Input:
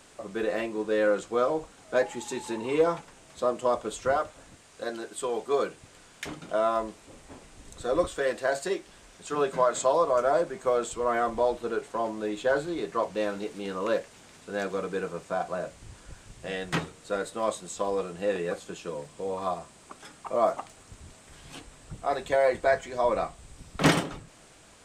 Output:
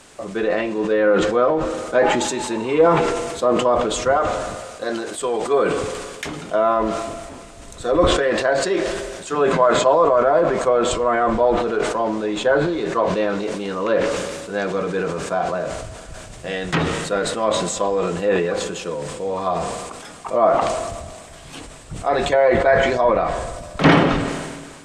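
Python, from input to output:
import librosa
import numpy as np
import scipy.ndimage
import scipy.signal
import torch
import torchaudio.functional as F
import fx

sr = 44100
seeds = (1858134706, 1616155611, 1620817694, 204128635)

y = fx.env_lowpass_down(x, sr, base_hz=2600.0, full_db=-22.0)
y = fx.rev_schroeder(y, sr, rt60_s=3.4, comb_ms=25, drr_db=16.0)
y = fx.sustainer(y, sr, db_per_s=35.0)
y = F.gain(torch.from_numpy(y), 7.5).numpy()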